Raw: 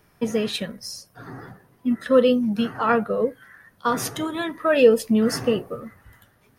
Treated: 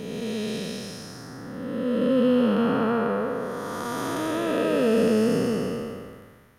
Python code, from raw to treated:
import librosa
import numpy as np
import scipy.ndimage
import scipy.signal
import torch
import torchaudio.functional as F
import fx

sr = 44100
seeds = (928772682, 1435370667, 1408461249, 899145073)

y = fx.spec_blur(x, sr, span_ms=680.0)
y = y * 10.0 ** (4.0 / 20.0)